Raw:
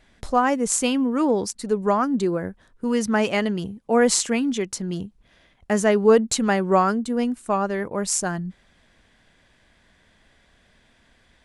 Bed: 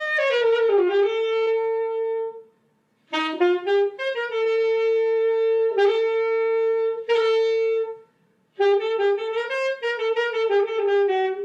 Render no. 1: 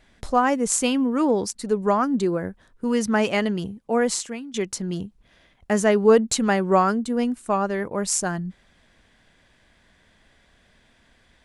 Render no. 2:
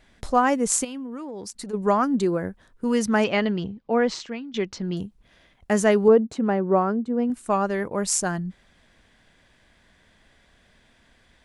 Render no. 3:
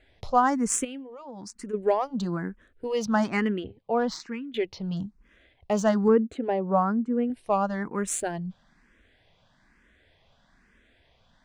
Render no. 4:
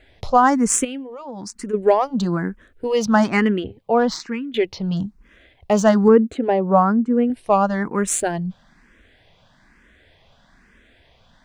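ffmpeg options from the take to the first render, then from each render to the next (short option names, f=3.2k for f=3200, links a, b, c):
-filter_complex "[0:a]asplit=2[a][b];[a]atrim=end=4.54,asetpts=PTS-STARTPTS,afade=t=out:st=3.68:d=0.86:silence=0.112202[c];[b]atrim=start=4.54,asetpts=PTS-STARTPTS,afade=t=in:d=0.004:c=hsin:silence=0.112202[d];[c][d]concat=n=2:v=0:a=1"
-filter_complex "[0:a]asplit=3[a][b][c];[a]afade=t=out:st=0.83:d=0.02[d];[b]acompressor=threshold=-31dB:ratio=12:attack=3.2:release=140:knee=1:detection=peak,afade=t=in:st=0.83:d=0.02,afade=t=out:st=1.73:d=0.02[e];[c]afade=t=in:st=1.73:d=0.02[f];[d][e][f]amix=inputs=3:normalize=0,asettb=1/sr,asplit=3[g][h][i];[g]atrim=end=3.244[j];[h]atrim=start=3.24:end=4.97,asetpts=PTS-STARTPTS,afade=t=in:d=0.004:c=qsin,afade=t=out:st=1.726:d=0.004:c=qsin,lowpass=f=4.9k:w=0.5412,lowpass=f=4.9k:w=1.3066[k];[i]atrim=start=4.966[l];[j][k]acrossfade=d=0.004:c1=hsin:c2=qsin[m];[m][l]acrossfade=d=0.004:c1=qsin:c2=hsin,asettb=1/sr,asplit=3[n][o][p];[n]atrim=end=6.084[q];[o]atrim=start=6.08:end=7.3,asetpts=PTS-STARTPTS,afade=t=in:d=0.004:c=qsin,afade=t=out:st=1.216:d=0.004:c=qsin,bandpass=f=340:t=q:w=0.55[r];[p]atrim=start=7.296[s];[q][r]acrossfade=d=0.004:c1=hsin:c2=qsin[t];[t][s]acrossfade=d=0.004:c1=qsin:c2=hsin"
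-filter_complex "[0:a]adynamicsmooth=sensitivity=2.5:basefreq=6.2k,asplit=2[a][b];[b]afreqshift=1.1[c];[a][c]amix=inputs=2:normalize=1"
-af "volume=8dB,alimiter=limit=-3dB:level=0:latency=1"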